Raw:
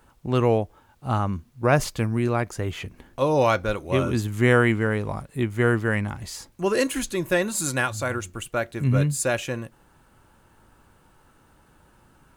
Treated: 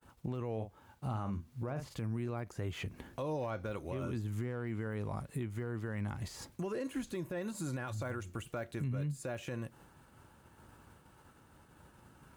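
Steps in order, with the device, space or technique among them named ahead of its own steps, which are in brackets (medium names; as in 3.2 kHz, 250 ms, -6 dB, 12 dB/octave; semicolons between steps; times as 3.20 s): bass shelf 150 Hz +5 dB; 0.52–1.98 s: doubling 45 ms -11 dB; expander -50 dBFS; podcast mastering chain (high-pass 72 Hz 12 dB/octave; de-esser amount 100%; compression 3:1, threshold -36 dBFS, peak gain reduction 16.5 dB; peak limiter -29 dBFS, peak gain reduction 7 dB; MP3 112 kbps 44.1 kHz)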